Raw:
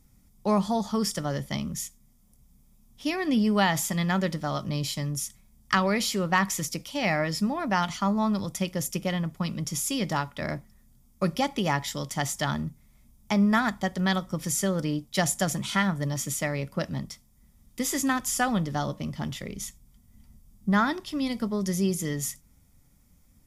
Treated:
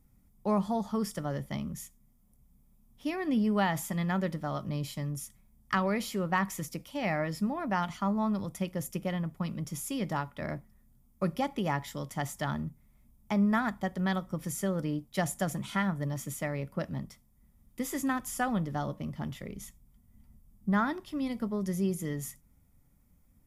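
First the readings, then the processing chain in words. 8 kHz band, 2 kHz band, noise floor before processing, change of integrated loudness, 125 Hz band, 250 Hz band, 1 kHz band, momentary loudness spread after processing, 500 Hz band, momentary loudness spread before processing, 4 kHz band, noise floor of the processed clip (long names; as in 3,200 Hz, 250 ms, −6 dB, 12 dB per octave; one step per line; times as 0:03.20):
−10.5 dB, −6.5 dB, −60 dBFS, −5.0 dB, −4.0 dB, −4.0 dB, −5.0 dB, 10 LU, −4.5 dB, 9 LU, −11.0 dB, −65 dBFS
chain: parametric band 5,300 Hz −9.5 dB 1.9 octaves
level −4 dB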